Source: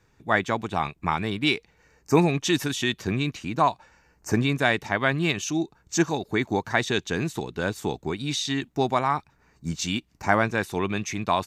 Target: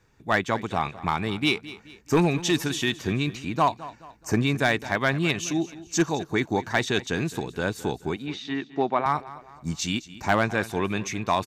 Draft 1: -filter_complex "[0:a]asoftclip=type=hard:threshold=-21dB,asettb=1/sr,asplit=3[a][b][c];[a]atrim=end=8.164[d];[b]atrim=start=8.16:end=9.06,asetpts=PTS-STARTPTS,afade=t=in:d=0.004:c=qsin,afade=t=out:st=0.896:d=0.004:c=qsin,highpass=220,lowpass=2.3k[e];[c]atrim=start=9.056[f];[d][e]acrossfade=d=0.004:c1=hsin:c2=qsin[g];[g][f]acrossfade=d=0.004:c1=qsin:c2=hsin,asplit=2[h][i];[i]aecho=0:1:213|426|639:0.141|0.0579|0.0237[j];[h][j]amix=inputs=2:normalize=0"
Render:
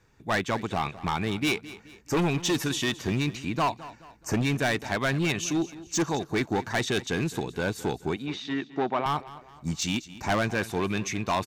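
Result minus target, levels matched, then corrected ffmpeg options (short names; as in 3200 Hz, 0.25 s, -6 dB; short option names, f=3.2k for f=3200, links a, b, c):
hard clip: distortion +10 dB
-filter_complex "[0:a]asoftclip=type=hard:threshold=-13dB,asettb=1/sr,asplit=3[a][b][c];[a]atrim=end=8.164[d];[b]atrim=start=8.16:end=9.06,asetpts=PTS-STARTPTS,afade=t=in:d=0.004:c=qsin,afade=t=out:st=0.896:d=0.004:c=qsin,highpass=220,lowpass=2.3k[e];[c]atrim=start=9.056[f];[d][e]acrossfade=d=0.004:c1=hsin:c2=qsin[g];[g][f]acrossfade=d=0.004:c1=qsin:c2=hsin,asplit=2[h][i];[i]aecho=0:1:213|426|639:0.141|0.0579|0.0237[j];[h][j]amix=inputs=2:normalize=0"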